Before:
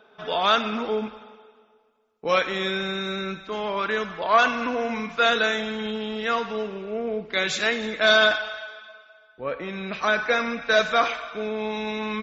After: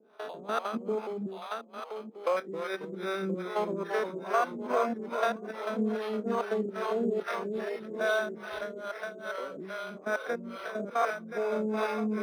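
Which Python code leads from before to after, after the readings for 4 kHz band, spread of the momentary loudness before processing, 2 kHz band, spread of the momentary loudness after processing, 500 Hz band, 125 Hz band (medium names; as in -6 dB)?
-19.0 dB, 12 LU, -13.0 dB, 9 LU, -5.0 dB, -4.0 dB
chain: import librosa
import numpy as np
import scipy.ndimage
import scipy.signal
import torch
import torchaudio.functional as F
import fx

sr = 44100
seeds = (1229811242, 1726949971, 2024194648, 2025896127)

y = fx.spec_steps(x, sr, hold_ms=100)
y = fx.rider(y, sr, range_db=4, speed_s=0.5)
y = fx.low_shelf(y, sr, hz=470.0, db=8.5)
y = fx.level_steps(y, sr, step_db=11)
y = scipy.signal.sosfilt(scipy.signal.butter(4, 220.0, 'highpass', fs=sr, output='sos'), y)
y = fx.echo_thinned(y, sr, ms=1025, feedback_pct=41, hz=790.0, wet_db=-3.0)
y = fx.dereverb_blind(y, sr, rt60_s=0.6)
y = fx.echo_pitch(y, sr, ms=132, semitones=-1, count=2, db_per_echo=-6.0)
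y = fx.dynamic_eq(y, sr, hz=3200.0, q=1.0, threshold_db=-42.0, ratio=4.0, max_db=-6)
y = scipy.signal.sosfilt(scipy.signal.butter(2, 5100.0, 'lowpass', fs=sr, output='sos'), y)
y = fx.harmonic_tremolo(y, sr, hz=2.4, depth_pct=100, crossover_hz=420.0)
y = np.interp(np.arange(len(y)), np.arange(len(y))[::6], y[::6])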